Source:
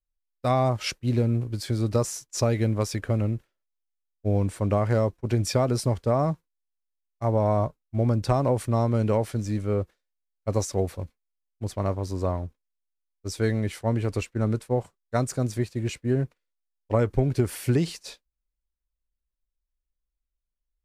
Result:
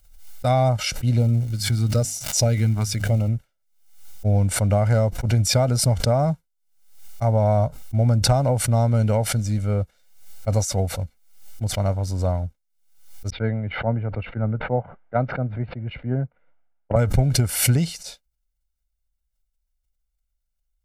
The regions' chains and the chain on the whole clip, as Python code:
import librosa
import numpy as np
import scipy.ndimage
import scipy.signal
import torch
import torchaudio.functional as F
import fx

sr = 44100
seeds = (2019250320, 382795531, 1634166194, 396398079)

y = fx.filter_lfo_notch(x, sr, shape='sine', hz=1.0, low_hz=530.0, high_hz=1700.0, q=1.4, at=(1.17, 3.27), fade=0.02)
y = fx.hum_notches(y, sr, base_hz=50, count=5, at=(1.17, 3.27), fade=0.02)
y = fx.dmg_crackle(y, sr, seeds[0], per_s=550.0, level_db=-43.0, at=(1.17, 3.27), fade=0.02)
y = fx.chain(y, sr, fx.gaussian_blur(sigma=4.3),
    fx.low_shelf(hz=130.0, db=-8.5),
    fx.band_widen(depth_pct=100), at=(13.3, 16.96))
y = fx.bass_treble(y, sr, bass_db=3, treble_db=4)
y = y + 0.63 * np.pad(y, (int(1.4 * sr / 1000.0), 0))[:len(y)]
y = fx.pre_swell(y, sr, db_per_s=81.0)